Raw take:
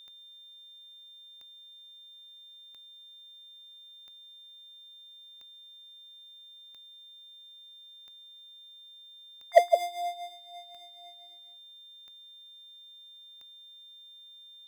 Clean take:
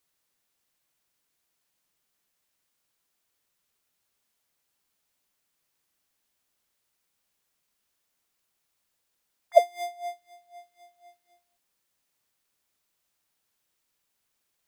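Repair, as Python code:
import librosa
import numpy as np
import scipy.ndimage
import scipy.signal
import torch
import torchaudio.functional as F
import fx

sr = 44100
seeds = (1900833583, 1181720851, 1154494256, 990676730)

y = fx.fix_declip(x, sr, threshold_db=-8.0)
y = fx.fix_declick_ar(y, sr, threshold=10.0)
y = fx.notch(y, sr, hz=3600.0, q=30.0)
y = fx.fix_echo_inverse(y, sr, delay_ms=163, level_db=-6.0)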